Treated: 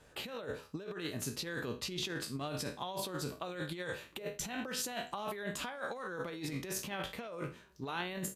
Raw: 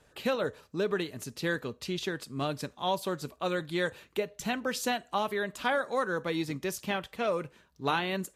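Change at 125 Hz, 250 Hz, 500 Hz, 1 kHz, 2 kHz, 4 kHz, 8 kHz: -4.5, -7.5, -10.0, -10.0, -8.0, -4.0, +0.5 dB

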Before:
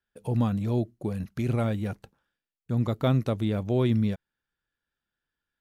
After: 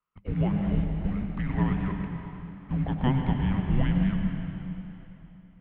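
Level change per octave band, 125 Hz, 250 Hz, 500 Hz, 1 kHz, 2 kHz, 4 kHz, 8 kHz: 0.0 dB, +1.0 dB, -8.0 dB, +1.0 dB, +3.5 dB, -3.0 dB, n/a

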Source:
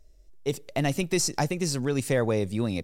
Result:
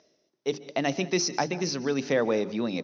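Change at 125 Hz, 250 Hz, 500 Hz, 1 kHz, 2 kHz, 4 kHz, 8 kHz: -8.5, -1.0, +0.5, +1.5, +1.0, +1.0, -3.0 dB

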